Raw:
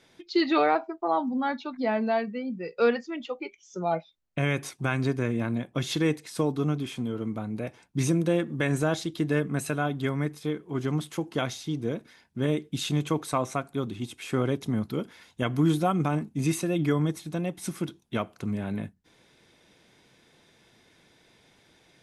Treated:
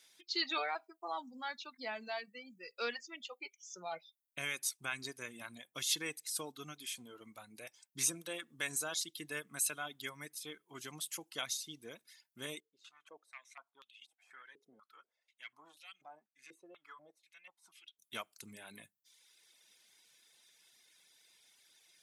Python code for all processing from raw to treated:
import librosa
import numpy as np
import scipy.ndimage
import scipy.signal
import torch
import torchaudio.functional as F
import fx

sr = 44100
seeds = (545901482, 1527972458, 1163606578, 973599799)

y = fx.chain(x, sr, fx.tube_stage(drive_db=17.0, bias=0.35),
    fx.filter_held_bandpass(hz=4.1, low_hz=440.0, high_hz=2800.0), at=(12.6, 17.99))
y = fx.low_shelf(y, sr, hz=68.0, db=-9.0)
y = fx.dereverb_blind(y, sr, rt60_s=0.99)
y = F.preemphasis(torch.from_numpy(y), 0.97).numpy()
y = y * librosa.db_to_amplitude(4.5)